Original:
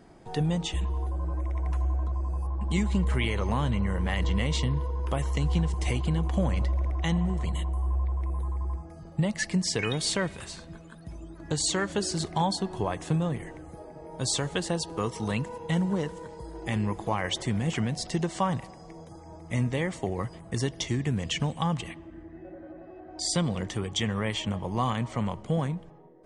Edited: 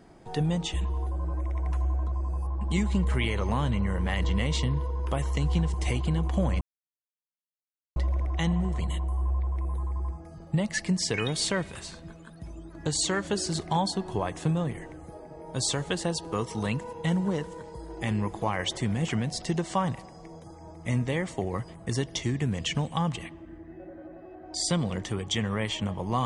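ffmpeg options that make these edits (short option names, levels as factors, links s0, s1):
-filter_complex "[0:a]asplit=2[s0][s1];[s0]atrim=end=6.61,asetpts=PTS-STARTPTS,afade=t=out:st=6.606:d=0.004:c=hsin,apad=pad_dur=1.35[s2];[s1]atrim=start=6.61,asetpts=PTS-STARTPTS,afade=t=in:d=0.004:c=hsin[s3];[s2][s3]concat=n=2:v=0:a=1"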